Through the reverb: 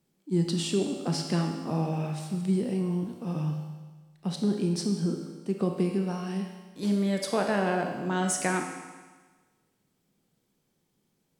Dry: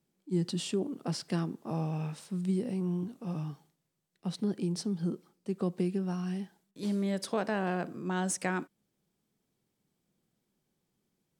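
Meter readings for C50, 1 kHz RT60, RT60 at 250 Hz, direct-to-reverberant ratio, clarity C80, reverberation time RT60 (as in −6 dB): 4.5 dB, 1.4 s, 1.4 s, 3.0 dB, 6.5 dB, 1.4 s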